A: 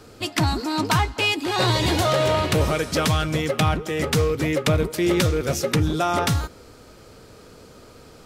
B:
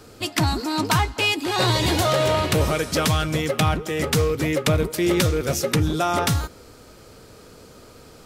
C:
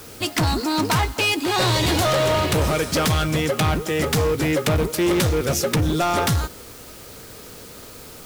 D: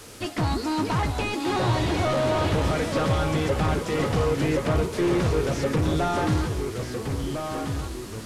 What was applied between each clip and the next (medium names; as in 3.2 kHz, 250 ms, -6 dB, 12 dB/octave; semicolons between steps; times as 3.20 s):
treble shelf 8 kHz +5 dB
in parallel at -7.5 dB: word length cut 6-bit, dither triangular; on the sum: overload inside the chain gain 16 dB
one-bit delta coder 64 kbps, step -39 dBFS; ever faster or slower copies 618 ms, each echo -2 st, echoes 3, each echo -6 dB; de-hum 80.79 Hz, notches 31; trim -3.5 dB